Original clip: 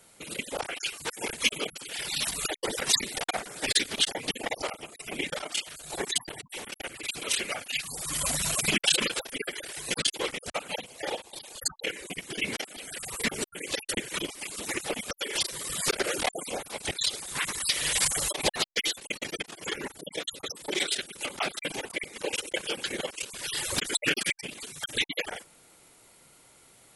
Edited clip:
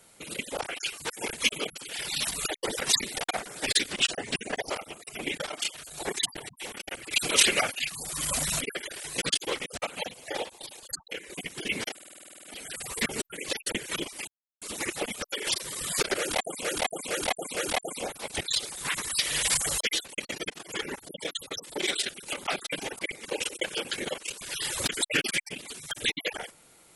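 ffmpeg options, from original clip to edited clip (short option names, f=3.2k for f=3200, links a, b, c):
-filter_complex "[0:a]asplit=23[a][b][c][d][e][f][g][h][i][j][k][l][m][n][o][p][q][r][s][t][u][v][w];[a]atrim=end=3.924[x];[b]atrim=start=3.92:end=4.53,asetpts=PTS-STARTPTS,asetrate=39249,aresample=44100[y];[c]atrim=start=4.526:end=7.062[z];[d]atrim=start=7.058:end=7.662,asetpts=PTS-STARTPTS,volume=8dB[aa];[e]atrim=start=7.658:end=8.532[ab];[f]atrim=start=9.328:end=11.522[ac];[g]atrim=start=11.518:end=12.022,asetpts=PTS-STARTPTS,volume=-5.5dB[ad];[h]atrim=start=12.018:end=12.712[ae];[i]atrim=start=12.658:end=12.712[af];[j]atrim=start=12.658:end=12.712[ag];[k]atrim=start=12.658:end=12.712[ah];[l]atrim=start=12.658:end=12.712[ai];[m]atrim=start=12.658:end=12.712[aj];[n]atrim=start=12.658:end=12.712[ak];[o]atrim=start=12.658:end=12.712[al];[p]atrim=start=12.658:end=12.712[am];[q]atrim=start=12.658:end=12.712[an];[r]atrim=start=12.658:end=14.5,asetpts=PTS-STARTPTS,afade=t=out:st=1.838:d=0.004:c=hsin,apad=pad_dur=0.34[ao];[s]atrim=start=14.5:end=16.532,asetpts=PTS-STARTPTS,afade=t=in:d=0.004:c=hsin[ap];[t]atrim=start=16.068:end=16.532[aq];[u]atrim=start=16.068:end=16.532[ar];[v]atrim=start=16.068:end=18.312[as];[w]atrim=start=18.728[at];[x][y]acrossfade=d=0.004:c1=hsin:c2=hsin[au];[au][z]acrossfade=d=0.004:c1=hsin:c2=hsin[av];[av][aa]acrossfade=d=0.004:c1=hsin:c2=hsin[aw];[aw][ab]acrossfade=d=0.004:c1=hsin:c2=hsin[ax];[ax][ac]acrossfade=d=0.004:c1=hsin:c2=hsin[ay];[ay][ad]acrossfade=d=0.004:c1=hsin:c2=hsin[az];[az][ae]acrossfade=d=0.004:c1=hsin:c2=hsin[ba];[ba][af]acrossfade=d=0.004:c1=hsin:c2=hsin[bb];[bb][ag]acrossfade=d=0.004:c1=hsin:c2=hsin[bc];[bc][ah]acrossfade=d=0.004:c1=hsin:c2=hsin[bd];[bd][ai]acrossfade=d=0.004:c1=hsin:c2=hsin[be];[be][aj]acrossfade=d=0.004:c1=hsin:c2=hsin[bf];[bf][ak]acrossfade=d=0.004:c1=hsin:c2=hsin[bg];[bg][al]acrossfade=d=0.004:c1=hsin:c2=hsin[bh];[bh][am]acrossfade=d=0.004:c1=hsin:c2=hsin[bi];[bi][an]acrossfade=d=0.004:c1=hsin:c2=hsin[bj];[ao][ap]concat=n=2:v=0:a=1[bk];[bj][bk]acrossfade=d=0.004:c1=hsin:c2=hsin[bl];[bl][aq]acrossfade=d=0.004:c1=hsin:c2=hsin[bm];[bm][ar]acrossfade=d=0.004:c1=hsin:c2=hsin[bn];[bn][as]acrossfade=d=0.004:c1=hsin:c2=hsin[bo];[bo][at]acrossfade=d=0.004:c1=hsin:c2=hsin"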